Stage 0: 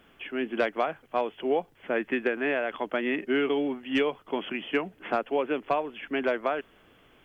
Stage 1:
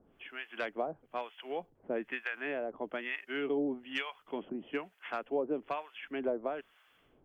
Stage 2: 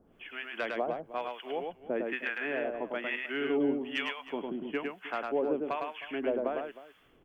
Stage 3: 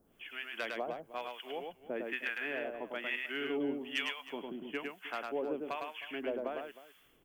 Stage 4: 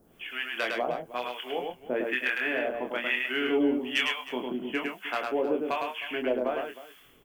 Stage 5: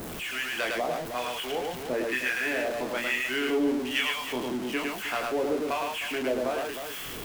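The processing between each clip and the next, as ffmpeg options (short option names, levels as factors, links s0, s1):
-filter_complex "[0:a]acrossover=split=840[s0][s1];[s0]aeval=exprs='val(0)*(1-1/2+1/2*cos(2*PI*1.1*n/s))':c=same[s2];[s1]aeval=exprs='val(0)*(1-1/2-1/2*cos(2*PI*1.1*n/s))':c=same[s3];[s2][s3]amix=inputs=2:normalize=0,volume=0.668"
-af "aecho=1:1:105|312:0.668|0.15,volume=1.26"
-af "crystalizer=i=4:c=0,volume=0.473"
-filter_complex "[0:a]asplit=2[s0][s1];[s1]adelay=24,volume=0.562[s2];[s0][s2]amix=inputs=2:normalize=0,volume=2.37"
-af "aeval=exprs='val(0)+0.5*0.0335*sgn(val(0))':c=same,volume=0.75"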